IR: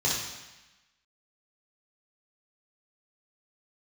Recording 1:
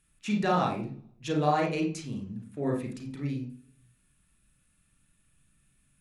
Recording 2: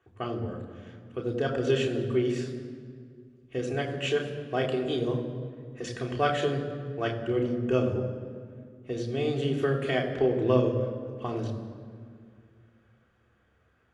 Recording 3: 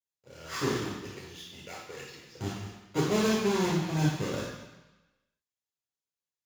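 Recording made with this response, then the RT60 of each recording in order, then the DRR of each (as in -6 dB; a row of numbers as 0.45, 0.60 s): 3; 0.45, 2.1, 1.0 s; 0.5, -2.0, -6.5 dB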